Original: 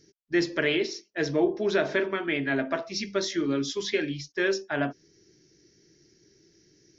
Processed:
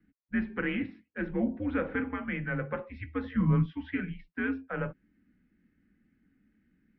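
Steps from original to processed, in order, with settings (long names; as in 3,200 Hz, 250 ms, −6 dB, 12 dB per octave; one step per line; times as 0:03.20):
0:03.24–0:03.66: hollow resonant body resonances 220/670/1,100 Hz, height 13 dB, ringing for 25 ms
single-sideband voice off tune −120 Hz 150–2,600 Hz
tape wow and flutter 20 cents
level −5.5 dB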